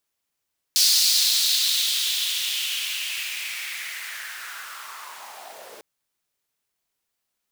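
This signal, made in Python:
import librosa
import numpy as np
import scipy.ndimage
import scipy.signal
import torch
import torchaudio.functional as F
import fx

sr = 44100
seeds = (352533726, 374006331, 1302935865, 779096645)

y = fx.riser_noise(sr, seeds[0], length_s=5.05, colour='pink', kind='highpass', start_hz=4600.0, end_hz=440.0, q=3.4, swell_db=-27.5, law='linear')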